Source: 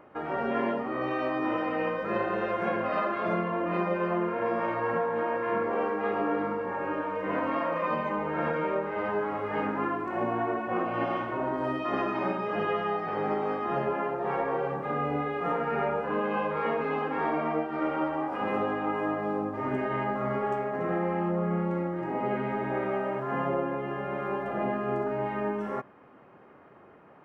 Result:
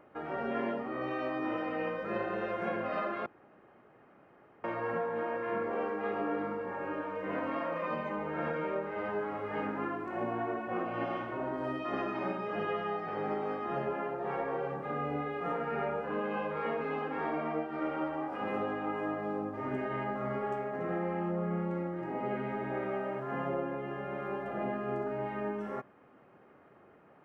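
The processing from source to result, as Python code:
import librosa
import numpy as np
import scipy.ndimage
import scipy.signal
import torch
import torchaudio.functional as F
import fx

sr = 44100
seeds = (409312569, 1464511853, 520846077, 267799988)

y = fx.edit(x, sr, fx.room_tone_fill(start_s=3.26, length_s=1.38), tone=tone)
y = fx.peak_eq(y, sr, hz=1000.0, db=-4.0, octaves=0.28)
y = y * 10.0 ** (-5.0 / 20.0)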